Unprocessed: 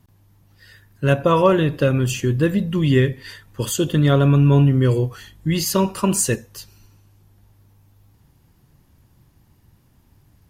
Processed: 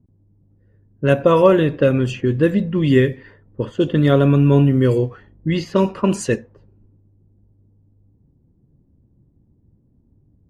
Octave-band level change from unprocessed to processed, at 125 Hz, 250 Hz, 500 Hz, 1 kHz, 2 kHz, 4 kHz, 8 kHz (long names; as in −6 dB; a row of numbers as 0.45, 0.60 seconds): −1.0, +2.5, +4.0, −0.5, +0.5, −3.5, −12.0 decibels